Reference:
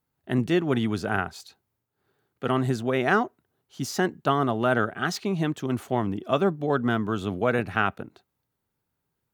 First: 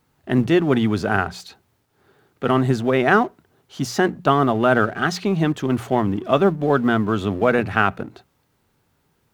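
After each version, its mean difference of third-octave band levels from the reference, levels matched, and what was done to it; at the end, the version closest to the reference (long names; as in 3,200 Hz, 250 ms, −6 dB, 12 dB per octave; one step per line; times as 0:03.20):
2.0 dB: mu-law and A-law mismatch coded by mu
high-shelf EQ 5,700 Hz −8.5 dB
mains-hum notches 60/120/180 Hz
level +6 dB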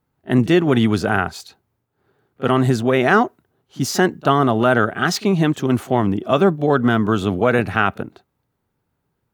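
1.0 dB: in parallel at +1 dB: brickwall limiter −16 dBFS, peak gain reduction 8.5 dB
on the sum: echo ahead of the sound 36 ms −21 dB
one half of a high-frequency compander decoder only
level +3 dB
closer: second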